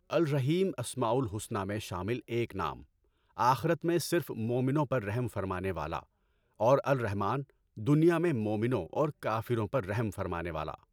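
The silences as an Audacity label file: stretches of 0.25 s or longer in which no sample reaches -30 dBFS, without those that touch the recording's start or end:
2.730000	3.400000	silence
5.980000	6.610000	silence
7.400000	7.870000	silence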